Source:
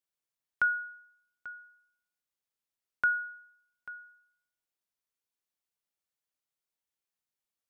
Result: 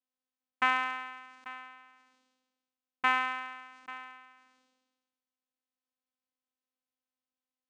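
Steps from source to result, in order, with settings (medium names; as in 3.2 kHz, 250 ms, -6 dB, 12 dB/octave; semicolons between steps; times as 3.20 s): block-companded coder 3-bit; vocoder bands 4, saw 257 Hz; decay stretcher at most 44 dB/s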